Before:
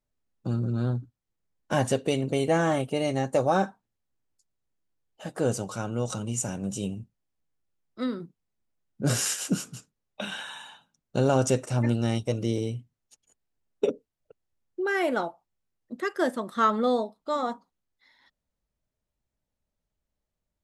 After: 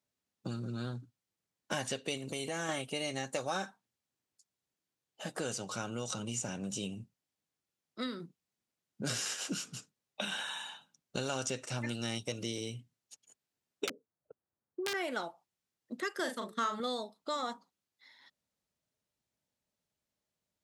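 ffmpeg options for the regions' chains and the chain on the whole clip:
ffmpeg -i in.wav -filter_complex "[0:a]asettb=1/sr,asplit=3[link_01][link_02][link_03];[link_01]atrim=end=2.174[link_04];[link_02]atrim=start=2.17:end=2.69,asetpts=PTS-STARTPTS,afade=type=in:duration=0.004:curve=qsin,afade=type=out:start_time=0.516:duration=0.004:curve=qsin,highshelf=frequency=7300:gain=11.5,acompressor=threshold=-27dB:ratio=5:attack=3.2:release=140:knee=1:detection=peak[link_05];[link_03]atrim=start=2.686[link_06];[link_04][link_05]acrossfade=duration=0.004:curve1=hsin:curve2=qsin[link_07];[link_07][link_06]acrossfade=duration=0.004:curve1=qsin:curve2=hsin,asettb=1/sr,asplit=3[link_08][link_09][link_10];[link_08]atrim=end=13.874[link_11];[link_09]atrim=start=13.87:end=14.94,asetpts=PTS-STARTPTS,afade=type=in:duration=0.004:curve=qsin,afade=type=out:start_time=1.066:duration=0.004:curve=qsin,lowpass=frequency=1500:width=0.5412,lowpass=frequency=1500:width=1.3066,aeval=exprs='(mod(11.9*val(0)+1,2)-1)/11.9':channel_layout=same[link_12];[link_10]atrim=start=14.936[link_13];[link_11][link_12]acrossfade=duration=0.004:curve1=hsin:curve2=qsin[link_14];[link_14][link_13]acrossfade=duration=0.004:curve1=qsin:curve2=hsin,asettb=1/sr,asplit=3[link_15][link_16][link_17];[link_15]atrim=end=16.194[link_18];[link_16]atrim=start=16.19:end=16.8,asetpts=PTS-STARTPTS,afade=type=in:duration=0.004:curve=qsin,afade=type=out:start_time=0.606:duration=0.004:curve=qsin,agate=range=-33dB:threshold=-34dB:ratio=3:release=100:detection=peak,asplit=2[link_19][link_20];[link_20]adelay=39,volume=-6.5dB[link_21];[link_19][link_21]amix=inputs=2:normalize=0,atrim=end_sample=26901,bandreject=frequency=217:width_type=h:width=4,bandreject=frequency=434:width_type=h:width=4[link_22];[link_17]atrim=start=16.796[link_23];[link_18][link_22]acrossfade=duration=0.004:curve1=hsin:curve2=qsin[link_24];[link_24][link_23]acrossfade=duration=0.004:curve1=qsin:curve2=hsin,highpass=120,equalizer=frequency=5100:width=0.42:gain=5.5,acrossover=split=1400|5800[link_25][link_26][link_27];[link_25]acompressor=threshold=-35dB:ratio=4[link_28];[link_26]acompressor=threshold=-36dB:ratio=4[link_29];[link_27]acompressor=threshold=-46dB:ratio=4[link_30];[link_28][link_29][link_30]amix=inputs=3:normalize=0,volume=-2dB" out.wav

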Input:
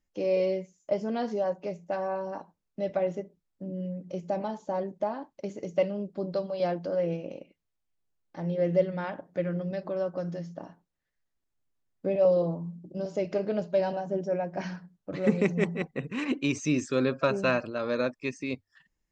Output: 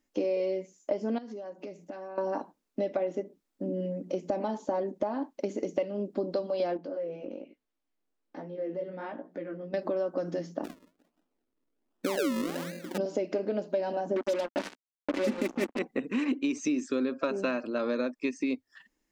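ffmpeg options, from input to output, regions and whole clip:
ffmpeg -i in.wav -filter_complex "[0:a]asettb=1/sr,asplit=3[link_01][link_02][link_03];[link_01]atrim=end=1.184[link_04];[link_02]atrim=start=1.18:end=2.18,asetpts=PTS-STARTPTS,afade=type=in:duration=0.004:curve=qsin,afade=type=out:start_time=0.996:duration=0.004:curve=qsin,equalizer=frequency=750:width_type=o:width=1.5:gain=-4.5,acompressor=threshold=-45dB:ratio=8:attack=3.2:release=140:knee=1:detection=peak[link_05];[link_03]atrim=start=2.176[link_06];[link_04][link_05]acrossfade=duration=0.004:curve1=hsin:curve2=qsin[link_07];[link_07][link_06]acrossfade=duration=0.004:curve1=qsin:curve2=hsin,asettb=1/sr,asplit=3[link_08][link_09][link_10];[link_08]atrim=end=6.774[link_11];[link_09]atrim=start=6.77:end=9.74,asetpts=PTS-STARTPTS,afade=type=in:duration=0.004:curve=qsin,afade=type=out:start_time=2.966:duration=0.004:curve=qsin,highshelf=frequency=5000:gain=-11,flanger=delay=16:depth=6.9:speed=1.2,acompressor=threshold=-45dB:ratio=2.5:attack=3.2:release=140:knee=1:detection=peak[link_12];[link_10]atrim=start=9.736[link_13];[link_11][link_12]acrossfade=duration=0.004:curve1=hsin:curve2=qsin[link_14];[link_14][link_13]acrossfade=duration=0.004:curve1=qsin:curve2=hsin,asettb=1/sr,asplit=3[link_15][link_16][link_17];[link_15]atrim=end=10.644[link_18];[link_16]atrim=start=10.64:end=12.98,asetpts=PTS-STARTPTS,afade=type=in:duration=0.004:curve=qsin,afade=type=out:start_time=2.336:duration=0.004:curve=qsin,asplit=2[link_19][link_20];[link_20]adelay=175,lowpass=frequency=1400:poles=1,volume=-19dB,asplit=2[link_21][link_22];[link_22]adelay=175,lowpass=frequency=1400:poles=1,volume=0.39,asplit=2[link_23][link_24];[link_24]adelay=175,lowpass=frequency=1400:poles=1,volume=0.39[link_25];[link_19][link_21][link_23][link_25]amix=inputs=4:normalize=0,atrim=end_sample=103194,acompressor=threshold=-32dB:ratio=2:attack=3.2:release=140:knee=1:detection=peak,acrusher=samples=39:mix=1:aa=0.000001:lfo=1:lforange=39:lforate=1.3[link_26];[link_17]atrim=start=12.976[link_27];[link_18][link_26]acrossfade=duration=0.004:curve1=hsin:curve2=qsin[link_28];[link_28][link_27]acrossfade=duration=0.004:curve1=qsin:curve2=hsin,asettb=1/sr,asplit=3[link_29][link_30][link_31];[link_29]atrim=end=14.164[link_32];[link_30]atrim=start=14.16:end=15.79,asetpts=PTS-STARTPTS,afade=type=in:duration=0.004:curve=qsin,afade=type=out:start_time=1.626:duration=0.004:curve=qsin,aecho=1:1:3.4:0.7,atrim=end_sample=71883,acrusher=bits=4:mix=0:aa=0.5[link_33];[link_31]atrim=start=15.786[link_34];[link_32][link_33]acrossfade=duration=0.004:curve1=hsin:curve2=qsin[link_35];[link_35][link_34]acrossfade=duration=0.004:curve1=qsin:curve2=hsin,lowshelf=frequency=190:width_type=q:width=3:gain=-10,acompressor=threshold=-33dB:ratio=6,volume=6dB" out.wav

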